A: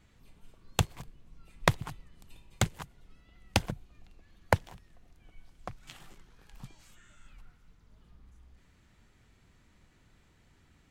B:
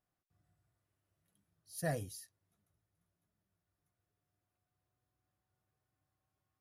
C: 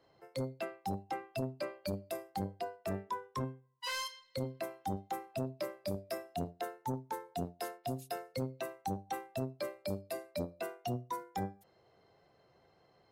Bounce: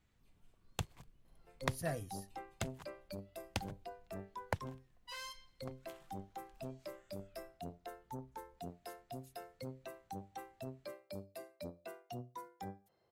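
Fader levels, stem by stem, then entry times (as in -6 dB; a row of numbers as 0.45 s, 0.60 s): -12.5 dB, -3.0 dB, -9.0 dB; 0.00 s, 0.00 s, 1.25 s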